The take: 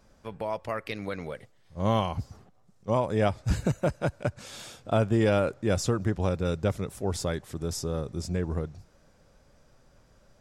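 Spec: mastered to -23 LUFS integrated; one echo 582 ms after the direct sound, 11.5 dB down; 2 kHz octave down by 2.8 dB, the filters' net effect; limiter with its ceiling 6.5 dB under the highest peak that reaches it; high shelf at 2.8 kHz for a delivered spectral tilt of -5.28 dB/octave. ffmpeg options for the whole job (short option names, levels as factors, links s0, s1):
-af "equalizer=f=2000:t=o:g=-6.5,highshelf=f=2800:g=6.5,alimiter=limit=0.112:level=0:latency=1,aecho=1:1:582:0.266,volume=2.66"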